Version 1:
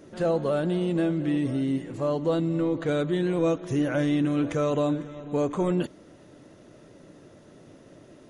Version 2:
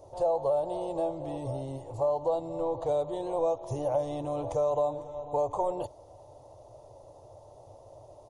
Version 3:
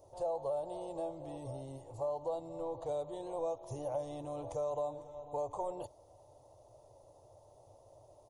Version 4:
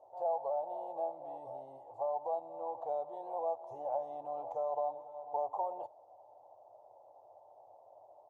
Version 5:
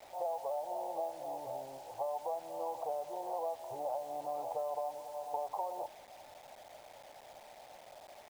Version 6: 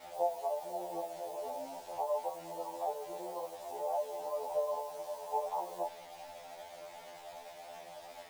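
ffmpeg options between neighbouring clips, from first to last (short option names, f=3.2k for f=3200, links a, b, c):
-af "firequalizer=gain_entry='entry(110,0);entry(180,-28);entry(540,0);entry(870,7);entry(1500,-28);entry(2500,-20);entry(4400,-10);entry(8600,-7)':delay=0.05:min_phase=1,acompressor=threshold=-29dB:ratio=3,volume=4dB"
-af "highshelf=f=6.9k:g=8.5,volume=-9dB"
-af "bandpass=f=780:t=q:w=4.4:csg=0,volume=8.5dB"
-af "acompressor=threshold=-38dB:ratio=6,acrusher=bits=9:mix=0:aa=0.000001,volume=4dB"
-af "flanger=delay=16:depth=2.2:speed=2.7,afftfilt=real='re*2*eq(mod(b,4),0)':imag='im*2*eq(mod(b,4),0)':win_size=2048:overlap=0.75,volume=9.5dB"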